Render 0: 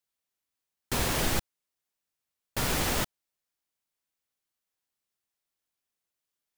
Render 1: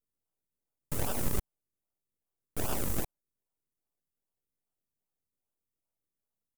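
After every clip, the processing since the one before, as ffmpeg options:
-filter_complex "[0:a]aecho=1:1:1.4:0.93,aeval=exprs='abs(val(0))':c=same,acrossover=split=6700[a][b];[a]acrusher=samples=41:mix=1:aa=0.000001:lfo=1:lforange=41:lforate=2.5[c];[c][b]amix=inputs=2:normalize=0,volume=-4.5dB"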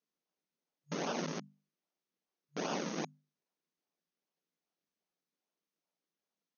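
-af "asoftclip=type=hard:threshold=-26.5dB,afftfilt=real='re*between(b*sr/4096,150,6600)':imag='im*between(b*sr/4096,150,6600)':win_size=4096:overlap=0.75,bandreject=f=50:t=h:w=6,bandreject=f=100:t=h:w=6,bandreject=f=150:t=h:w=6,bandreject=f=200:t=h:w=6,bandreject=f=250:t=h:w=6,volume=3.5dB"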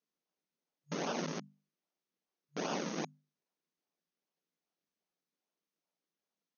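-af anull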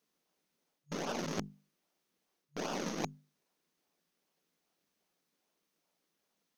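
-af "areverse,acompressor=threshold=-45dB:ratio=10,areverse,aeval=exprs='0.0168*(cos(1*acos(clip(val(0)/0.0168,-1,1)))-cos(1*PI/2))+0.00596*(cos(2*acos(clip(val(0)/0.0168,-1,1)))-cos(2*PI/2))+0.00133*(cos(8*acos(clip(val(0)/0.0168,-1,1)))-cos(8*PI/2))':c=same,volume=10dB"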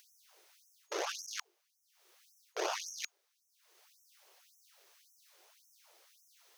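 -filter_complex "[0:a]asplit=2[a][b];[b]acompressor=mode=upward:threshold=-47dB:ratio=2.5,volume=0dB[c];[a][c]amix=inputs=2:normalize=0,afftfilt=real='re*gte(b*sr/1024,310*pow(5500/310,0.5+0.5*sin(2*PI*1.8*pts/sr)))':imag='im*gte(b*sr/1024,310*pow(5500/310,0.5+0.5*sin(2*PI*1.8*pts/sr)))':win_size=1024:overlap=0.75,volume=-1.5dB"

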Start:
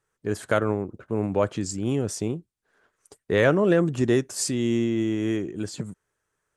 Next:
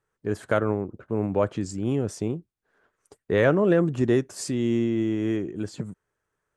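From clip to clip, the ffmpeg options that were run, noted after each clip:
-af "highshelf=f=3.1k:g=-8.5"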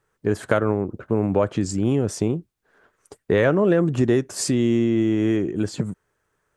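-af "acompressor=threshold=-25dB:ratio=2.5,volume=8dB"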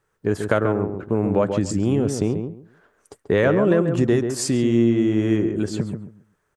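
-filter_complex "[0:a]asplit=2[a][b];[b]adelay=137,lowpass=f=1.4k:p=1,volume=-6dB,asplit=2[c][d];[d]adelay=137,lowpass=f=1.4k:p=1,volume=0.21,asplit=2[e][f];[f]adelay=137,lowpass=f=1.4k:p=1,volume=0.21[g];[a][c][e][g]amix=inputs=4:normalize=0"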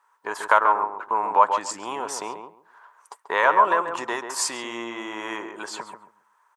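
-af "highpass=f=970:t=q:w=9.1,volume=1dB"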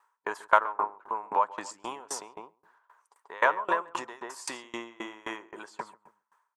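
-af "aeval=exprs='val(0)*pow(10,-26*if(lt(mod(3.8*n/s,1),2*abs(3.8)/1000),1-mod(3.8*n/s,1)/(2*abs(3.8)/1000),(mod(3.8*n/s,1)-2*abs(3.8)/1000)/(1-2*abs(3.8)/1000))/20)':c=same"

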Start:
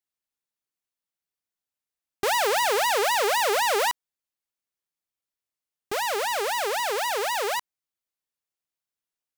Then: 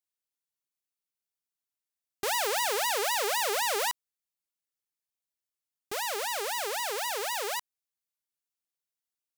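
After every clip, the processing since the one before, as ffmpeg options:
-af "highshelf=f=3.5k:g=7,volume=-7.5dB"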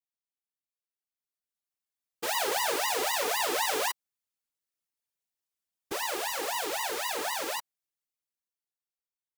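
-af "dynaudnorm=f=280:g=11:m=11.5dB,afftfilt=real='hypot(re,im)*cos(2*PI*random(0))':imag='hypot(re,im)*sin(2*PI*random(1))':win_size=512:overlap=0.75,volume=-5.5dB"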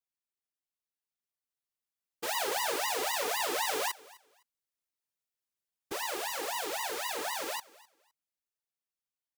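-af "aecho=1:1:256|512:0.0794|0.0175,volume=-3dB"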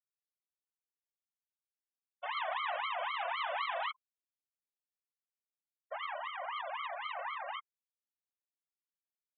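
-af "highpass=f=170:t=q:w=0.5412,highpass=f=170:t=q:w=1.307,lowpass=f=3.5k:t=q:w=0.5176,lowpass=f=3.5k:t=q:w=0.7071,lowpass=f=3.5k:t=q:w=1.932,afreqshift=240,afftfilt=real='re*gte(hypot(re,im),0.0224)':imag='im*gte(hypot(re,im),0.0224)':win_size=1024:overlap=0.75,volume=-2.5dB"

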